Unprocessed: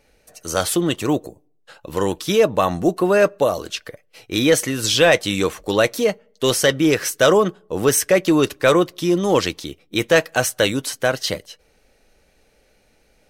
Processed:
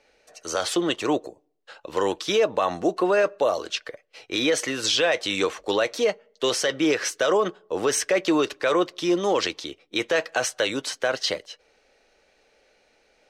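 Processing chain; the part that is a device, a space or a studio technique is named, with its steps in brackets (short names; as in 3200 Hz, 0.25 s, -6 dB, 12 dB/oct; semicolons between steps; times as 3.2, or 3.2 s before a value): DJ mixer with the lows and highs turned down (three-band isolator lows -15 dB, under 320 Hz, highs -21 dB, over 7200 Hz; limiter -12.5 dBFS, peak gain reduction 9 dB)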